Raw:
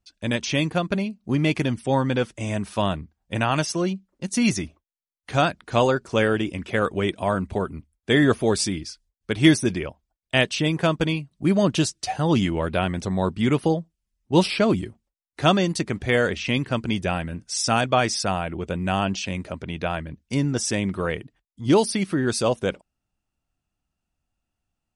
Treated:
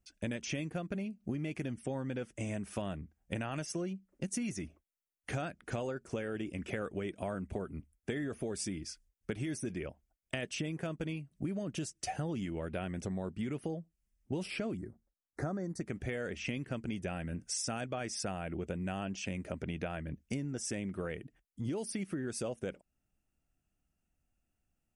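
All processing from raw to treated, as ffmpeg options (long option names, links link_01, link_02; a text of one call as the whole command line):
ffmpeg -i in.wav -filter_complex "[0:a]asettb=1/sr,asplit=3[link_01][link_02][link_03];[link_01]atrim=end=14.774[link_04];[link_02]atrim=start=14.77:end=15.81,asetpts=PTS-STARTPTS,afade=type=in:duration=0.004:curve=qsin,afade=type=out:start_time=1.036:duration=0.004:curve=qsin,asuperstop=centerf=2900:order=4:qfactor=1,highshelf=frequency=5900:gain=-10.5[link_05];[link_03]atrim=start=15.806[link_06];[link_04][link_05]acrossfade=duration=0.004:curve1=hsin:curve2=qsin[link_07];[link_07][link_06]acrossfade=duration=0.004:curve1=qsin:curve2=hsin,equalizer=frequency=100:width_type=o:width=0.67:gain=-3,equalizer=frequency=1000:width_type=o:width=0.67:gain=-9,equalizer=frequency=4000:width_type=o:width=0.67:gain=-12,alimiter=limit=-14.5dB:level=0:latency=1:release=16,acompressor=threshold=-34dB:ratio=12" out.wav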